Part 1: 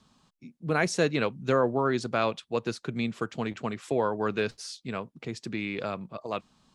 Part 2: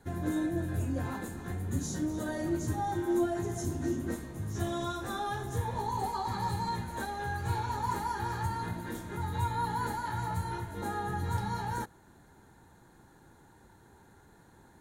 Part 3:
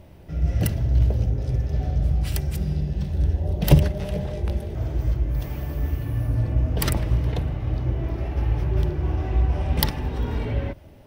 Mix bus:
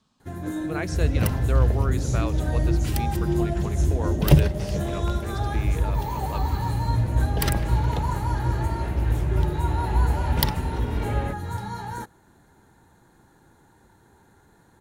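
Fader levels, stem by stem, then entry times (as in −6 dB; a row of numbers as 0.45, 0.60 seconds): −5.5, +1.5, −0.5 decibels; 0.00, 0.20, 0.60 seconds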